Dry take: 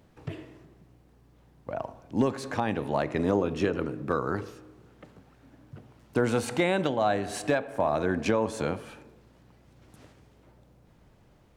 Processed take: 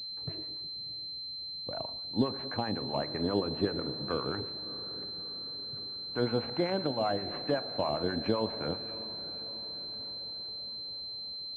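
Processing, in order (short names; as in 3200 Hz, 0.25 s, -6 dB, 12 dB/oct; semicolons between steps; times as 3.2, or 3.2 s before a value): harmonic tremolo 7.7 Hz, depth 70%, crossover 770 Hz; on a send: diffused feedback echo 0.642 s, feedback 57%, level -16 dB; on the sum: pulse-width modulation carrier 4100 Hz; gain -2 dB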